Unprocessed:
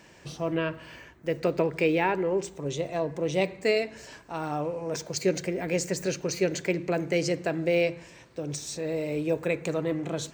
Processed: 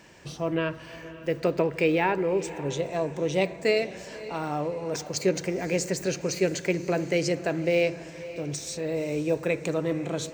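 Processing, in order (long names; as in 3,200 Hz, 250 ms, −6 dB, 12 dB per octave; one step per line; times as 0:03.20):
feedback delay with all-pass diffusion 540 ms, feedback 44%, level −15.5 dB
level +1 dB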